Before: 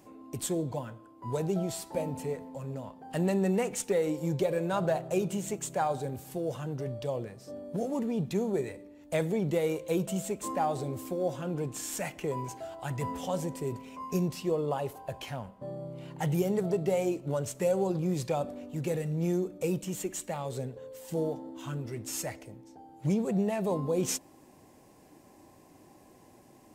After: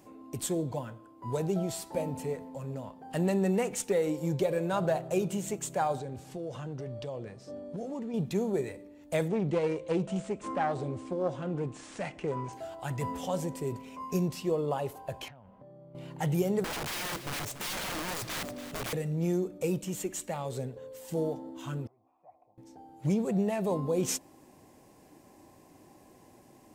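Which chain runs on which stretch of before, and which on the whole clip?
5.99–8.14 LPF 7000 Hz + compressor 3:1, threshold -35 dBFS
9.28–12.53 self-modulated delay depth 0.18 ms + brick-wall FIR low-pass 10000 Hz + high shelf 5300 Hz -11.5 dB
15.28–15.95 LPF 2900 Hz + compressor 16:1, threshold -48 dBFS
16.64–18.93 wrapped overs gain 31 dB + feedback echo 0.286 s, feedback 32%, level -12 dB
21.87–22.58 compressor 5:1, threshold -39 dBFS + vocal tract filter a
whole clip: dry

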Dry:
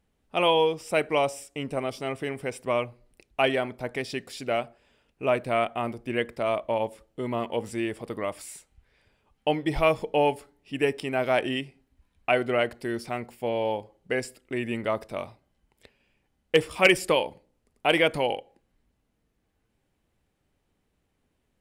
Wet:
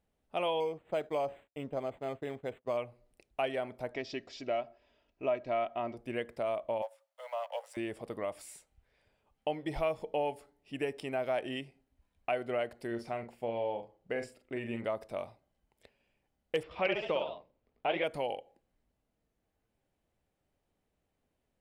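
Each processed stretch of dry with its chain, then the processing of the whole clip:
0.6–2.77 expander -37 dBFS + high shelf 5400 Hz -8.5 dB + decimation joined by straight lines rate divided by 8×
3.92–5.97 steep low-pass 6500 Hz 48 dB/oct + notch 1500 Hz, Q 24 + comb 3.1 ms, depth 43%
6.82–7.77 G.711 law mismatch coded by A + steep high-pass 520 Hz 96 dB/oct
12.87–14.85 LPF 3900 Hz 6 dB/oct + doubler 43 ms -8 dB
16.63–18.04 LPF 3900 Hz 24 dB/oct + echoes that change speed 81 ms, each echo +1 st, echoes 3, each echo -6 dB
whole clip: bell 640 Hz +6 dB 0.82 oct; compressor 2:1, threshold -25 dBFS; gain -8 dB

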